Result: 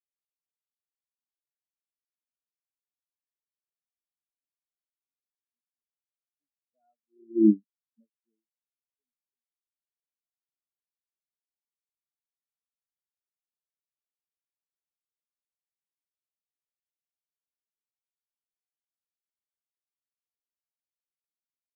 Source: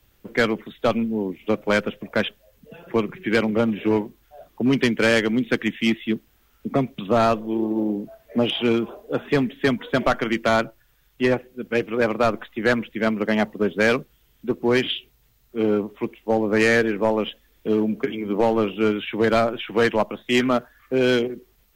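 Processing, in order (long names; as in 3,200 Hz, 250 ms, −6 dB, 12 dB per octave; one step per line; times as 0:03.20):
source passing by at 0:07.48, 18 m/s, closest 1.4 metres
every bin expanded away from the loudest bin 4 to 1
level +7 dB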